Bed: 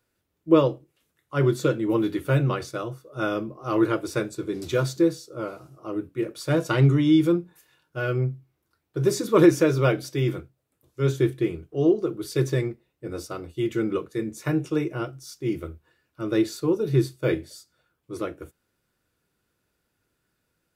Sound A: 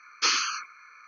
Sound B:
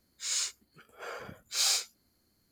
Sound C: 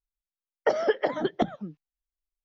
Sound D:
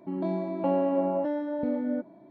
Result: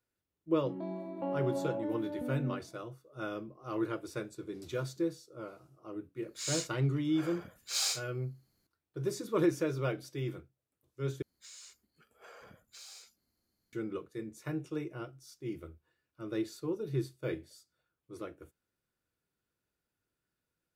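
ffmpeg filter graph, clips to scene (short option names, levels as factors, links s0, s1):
-filter_complex "[2:a]asplit=2[s0][s1];[0:a]volume=0.237[s2];[s1]acompressor=threshold=0.0112:ratio=6:attack=3.2:release=140:knee=1:detection=peak[s3];[s2]asplit=2[s4][s5];[s4]atrim=end=11.224[s6];[s3]atrim=end=2.51,asetpts=PTS-STARTPTS,volume=0.335[s7];[s5]atrim=start=13.726[s8];[4:a]atrim=end=2.3,asetpts=PTS-STARTPTS,volume=0.316,afade=t=in:d=0.004:c=hsin,afade=t=out:st=2.296:d=0.004:c=hsin,adelay=580[s9];[s0]atrim=end=2.51,asetpts=PTS-STARTPTS,volume=0.596,afade=t=in:d=0.004:c=hsin,afade=t=out:st=2.506:d=0.004:c=hsin,adelay=6160[s10];[s6][s7]acrossfade=d=0.004:c1=hsin:c2=hsin[s11];[s11][s8]acrossfade=d=0.004:c1=hsin:c2=hsin[s12];[s12][s9][s10]amix=inputs=3:normalize=0"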